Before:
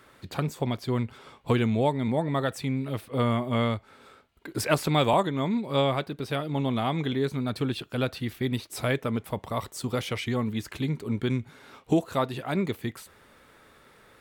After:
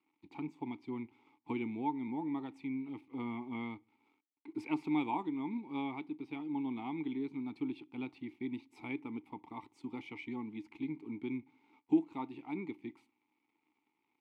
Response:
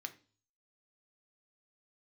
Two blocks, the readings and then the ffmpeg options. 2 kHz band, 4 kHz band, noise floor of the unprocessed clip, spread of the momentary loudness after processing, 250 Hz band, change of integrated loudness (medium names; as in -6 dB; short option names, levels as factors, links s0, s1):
-13.5 dB, -22.0 dB, -57 dBFS, 12 LU, -7.5 dB, -11.5 dB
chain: -filter_complex "[0:a]aeval=exprs='sgn(val(0))*max(abs(val(0))-0.002,0)':c=same,asplit=3[s0][s1][s2];[s0]bandpass=f=300:t=q:w=8,volume=1[s3];[s1]bandpass=f=870:t=q:w=8,volume=0.501[s4];[s2]bandpass=f=2240:t=q:w=8,volume=0.355[s5];[s3][s4][s5]amix=inputs=3:normalize=0,asplit=2[s6][s7];[1:a]atrim=start_sample=2205,asetrate=41013,aresample=44100[s8];[s7][s8]afir=irnorm=-1:irlink=0,volume=0.335[s9];[s6][s9]amix=inputs=2:normalize=0,volume=0.841"